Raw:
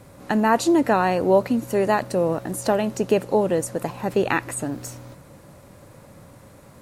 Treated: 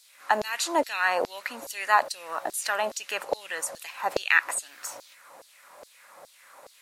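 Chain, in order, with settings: LFO high-pass saw down 2.4 Hz 570–4800 Hz

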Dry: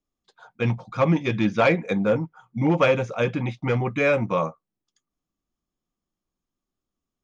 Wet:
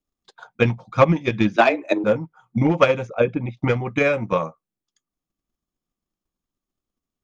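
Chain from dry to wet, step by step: 3.07–3.57 formant sharpening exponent 1.5; transient shaper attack +11 dB, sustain -1 dB; 1.56–2.04 frequency shift +120 Hz; gain -2 dB

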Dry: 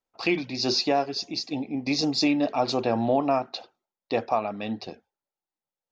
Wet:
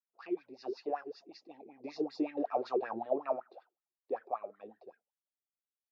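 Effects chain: Doppler pass-by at 2.47, 6 m/s, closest 6 m; wah 5.3 Hz 360–1800 Hz, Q 7.8; gain +3 dB

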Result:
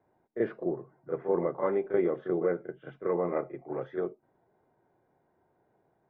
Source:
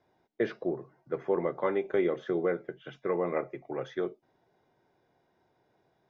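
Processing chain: LPF 1500 Hz 12 dB/oct; reverse echo 35 ms -9 dB

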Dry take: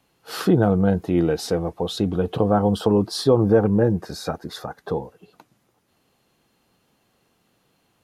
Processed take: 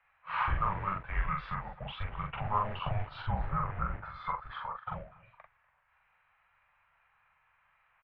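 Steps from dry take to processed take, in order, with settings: Chebyshev band-stop 250–1500 Hz, order 2; in parallel at -4.5 dB: short-mantissa float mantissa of 2-bit; 3.22–3.99 on the sum: air absorption 290 m; doubler 43 ms -3 dB; on a send: echo 0.243 s -22.5 dB; on the sum: mistuned SSB -300 Hz 430–2500 Hz

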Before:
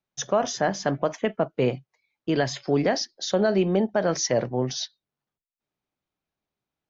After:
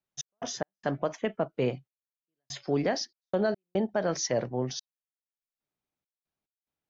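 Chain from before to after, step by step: step gate "x.x.xxxxx...xx" 72 bpm -60 dB; gain -5 dB

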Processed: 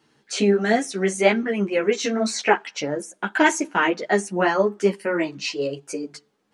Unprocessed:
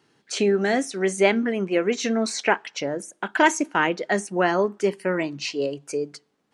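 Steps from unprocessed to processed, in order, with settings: ensemble effect; gain +4.5 dB

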